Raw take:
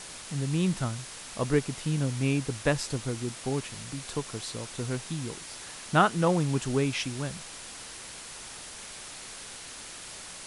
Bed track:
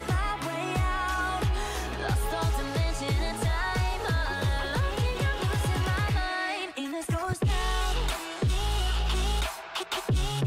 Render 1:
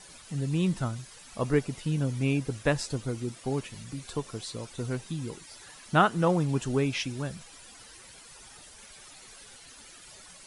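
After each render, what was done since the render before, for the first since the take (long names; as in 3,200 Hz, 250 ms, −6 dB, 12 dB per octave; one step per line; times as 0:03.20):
broadband denoise 12 dB, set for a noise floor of −43 dBFS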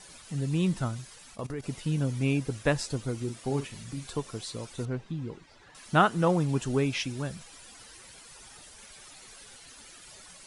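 0:01.14–0:01.64: output level in coarse steps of 17 dB
0:03.16–0:04.08: double-tracking delay 43 ms −10.5 dB
0:04.85–0:05.75: head-to-tape spacing loss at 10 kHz 25 dB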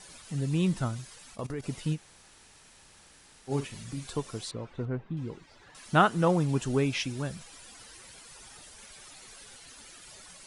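0:01.95–0:03.50: fill with room tone, crossfade 0.06 s
0:04.51–0:05.17: low-pass filter 2,000 Hz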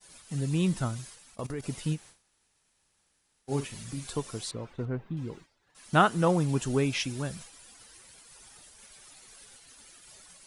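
downward expander −44 dBFS
high-shelf EQ 9,400 Hz +8.5 dB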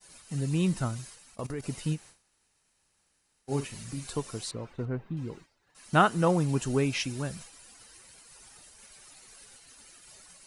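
notch filter 3,400 Hz, Q 14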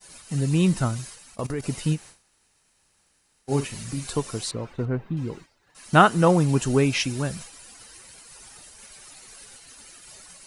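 level +6.5 dB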